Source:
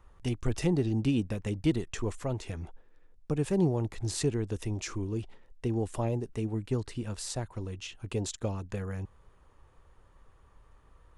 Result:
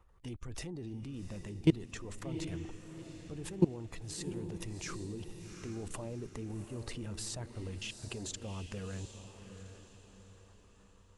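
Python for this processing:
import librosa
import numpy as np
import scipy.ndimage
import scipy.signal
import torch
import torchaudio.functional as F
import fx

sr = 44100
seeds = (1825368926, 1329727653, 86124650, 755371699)

p1 = fx.spec_quant(x, sr, step_db=15)
p2 = fx.level_steps(p1, sr, step_db=23)
p3 = p2 + fx.echo_diffused(p2, sr, ms=758, feedback_pct=43, wet_db=-9.5, dry=0)
p4 = fx.rider(p3, sr, range_db=3, speed_s=2.0)
y = p4 * 10.0 ** (2.0 / 20.0)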